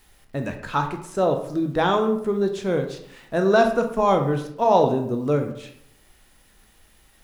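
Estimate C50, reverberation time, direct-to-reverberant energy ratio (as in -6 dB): 8.5 dB, 0.70 s, 4.5 dB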